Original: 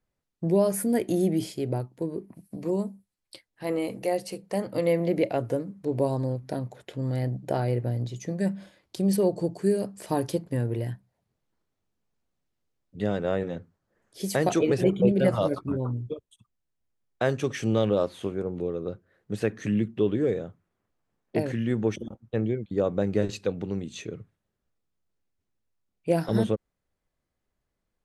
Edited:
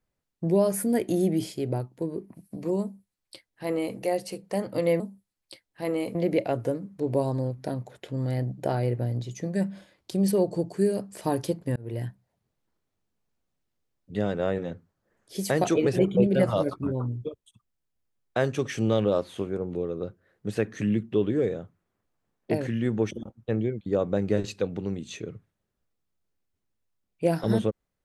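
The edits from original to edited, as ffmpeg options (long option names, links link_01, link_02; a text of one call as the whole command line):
ffmpeg -i in.wav -filter_complex "[0:a]asplit=4[link_01][link_02][link_03][link_04];[link_01]atrim=end=5.002[link_05];[link_02]atrim=start=2.818:end=3.972[link_06];[link_03]atrim=start=4.998:end=10.61,asetpts=PTS-STARTPTS,afade=type=out:start_time=5.608:duration=0.004:curve=hsin[link_07];[link_04]atrim=start=10.61,asetpts=PTS-STARTPTS,afade=type=in:duration=0.25[link_08];[link_05][link_06]acrossfade=duration=0.004:curve1=hsin:curve2=hsin[link_09];[link_07][link_08]concat=n=2:v=0:a=1[link_10];[link_09][link_10]acrossfade=duration=0.004:curve1=hsin:curve2=hsin" out.wav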